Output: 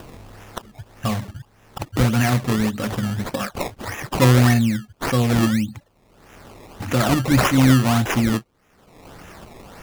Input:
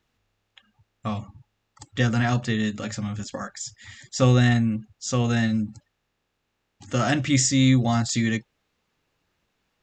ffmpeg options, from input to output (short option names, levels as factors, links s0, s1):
-filter_complex "[0:a]acompressor=mode=upward:threshold=0.0794:ratio=2.5,asettb=1/sr,asplit=3[s0][s1][s2];[s0]atrim=end=5.154[s3];[s1]atrim=start=5.15:end=5.62,asetpts=PTS-STARTPTS,afade=t=in:d=0.004:c=qsin,afade=t=out:st=0.466:d=0.004:c=qsin,highshelf=f=2800:t=q:w=3:g=-7.5[s4];[s2]atrim=start=5.616[s5];[s3][s4]acrossfade=d=0.004:c1=hsin:c2=qsin[s6];[s6][s5]acrossfade=d=0.004:c1=qsin:c2=hsin,acrusher=samples=20:mix=1:aa=0.000001:lfo=1:lforange=20:lforate=1.7,volume=1.58"